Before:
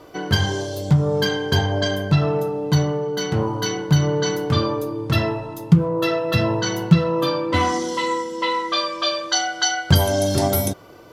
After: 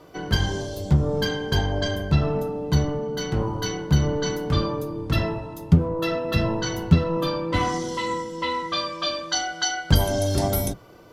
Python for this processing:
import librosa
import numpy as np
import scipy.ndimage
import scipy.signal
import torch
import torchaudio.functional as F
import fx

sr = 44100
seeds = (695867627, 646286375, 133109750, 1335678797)

y = fx.octave_divider(x, sr, octaves=1, level_db=-2.0)
y = y * 10.0 ** (-4.5 / 20.0)